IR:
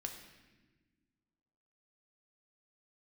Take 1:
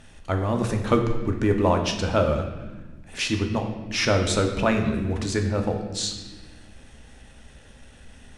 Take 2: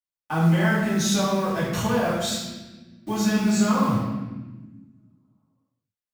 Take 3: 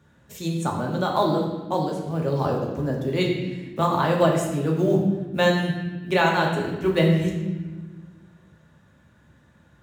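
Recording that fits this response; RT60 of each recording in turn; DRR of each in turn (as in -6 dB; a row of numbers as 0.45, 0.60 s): 1; 1.3, 1.3, 1.3 s; 3.0, -9.5, -1.0 dB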